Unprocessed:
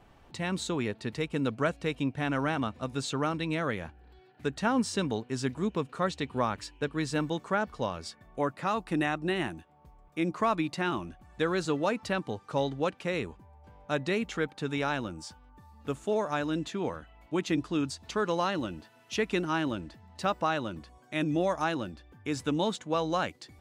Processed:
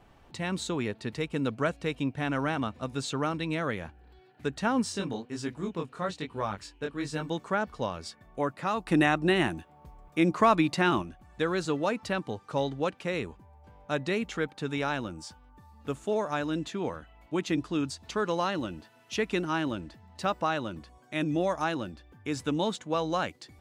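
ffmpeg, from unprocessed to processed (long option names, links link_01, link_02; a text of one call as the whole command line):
ffmpeg -i in.wav -filter_complex "[0:a]asplit=3[link_01][link_02][link_03];[link_01]afade=type=out:start_time=4.92:duration=0.02[link_04];[link_02]flanger=delay=18:depth=6.9:speed=1.1,afade=type=in:start_time=4.92:duration=0.02,afade=type=out:start_time=7.28:duration=0.02[link_05];[link_03]afade=type=in:start_time=7.28:duration=0.02[link_06];[link_04][link_05][link_06]amix=inputs=3:normalize=0,asplit=3[link_07][link_08][link_09];[link_07]atrim=end=8.872[link_10];[link_08]atrim=start=8.868:end=11.022,asetpts=PTS-STARTPTS,volume=5.5dB[link_11];[link_09]atrim=start=11.018[link_12];[link_10][link_11]acrossfade=duration=0.004:curve1=hsin:curve2=hsin[link_13];[link_13][link_12]acrossfade=duration=0.004:curve1=hsin:curve2=hsin" out.wav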